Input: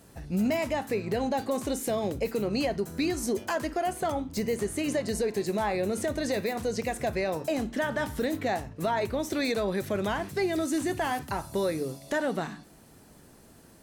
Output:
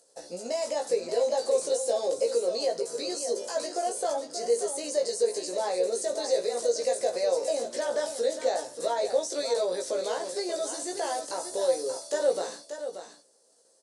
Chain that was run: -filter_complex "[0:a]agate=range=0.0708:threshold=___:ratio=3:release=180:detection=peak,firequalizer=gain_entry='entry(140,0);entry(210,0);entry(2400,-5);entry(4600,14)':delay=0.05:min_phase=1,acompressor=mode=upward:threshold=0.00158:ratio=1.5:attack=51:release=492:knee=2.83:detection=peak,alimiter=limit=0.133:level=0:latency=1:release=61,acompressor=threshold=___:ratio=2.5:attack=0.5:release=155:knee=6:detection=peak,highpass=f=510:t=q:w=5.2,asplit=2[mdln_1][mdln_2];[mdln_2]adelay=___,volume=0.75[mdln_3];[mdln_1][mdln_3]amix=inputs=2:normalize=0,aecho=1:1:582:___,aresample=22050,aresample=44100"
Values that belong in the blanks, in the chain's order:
0.00891, 0.02, 17, 0.355